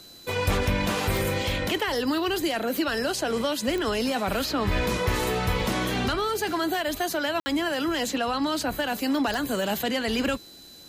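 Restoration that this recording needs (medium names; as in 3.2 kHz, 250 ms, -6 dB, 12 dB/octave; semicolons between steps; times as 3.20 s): de-click; band-stop 4 kHz, Q 30; room tone fill 7.40–7.46 s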